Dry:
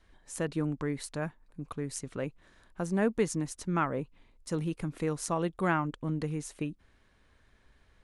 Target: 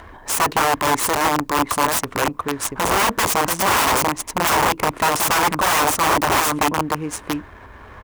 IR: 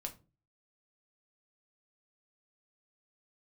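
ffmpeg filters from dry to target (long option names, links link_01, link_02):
-filter_complex "[0:a]asplit=2[link_01][link_02];[link_02]acompressor=mode=upward:threshold=-34dB:ratio=2.5,volume=2.5dB[link_03];[link_01][link_03]amix=inputs=2:normalize=0,aemphasis=mode=production:type=50fm,aecho=1:1:685:0.631,asplit=2[link_04][link_05];[1:a]atrim=start_sample=2205,asetrate=88200,aresample=44100[link_06];[link_05][link_06]afir=irnorm=-1:irlink=0,volume=-2.5dB[link_07];[link_04][link_07]amix=inputs=2:normalize=0,adynamicsmooth=sensitivity=7:basefreq=1500,aeval=exprs='(mod(8.91*val(0)+1,2)-1)/8.91':channel_layout=same,equalizer=frequency=160:width_type=o:width=0.67:gain=-8,equalizer=frequency=1000:width_type=o:width=0.67:gain=8,equalizer=frequency=4000:width_type=o:width=0.67:gain=-4,acrusher=bits=11:mix=0:aa=0.000001,highpass=47,volume=5.5dB"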